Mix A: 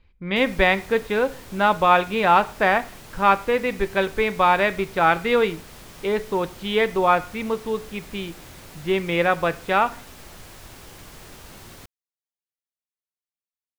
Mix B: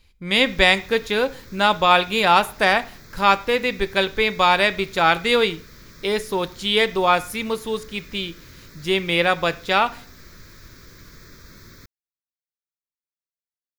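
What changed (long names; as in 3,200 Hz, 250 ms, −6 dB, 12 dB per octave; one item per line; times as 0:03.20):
speech: remove low-pass filter 2,000 Hz 12 dB per octave
background: add phaser with its sweep stopped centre 2,900 Hz, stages 6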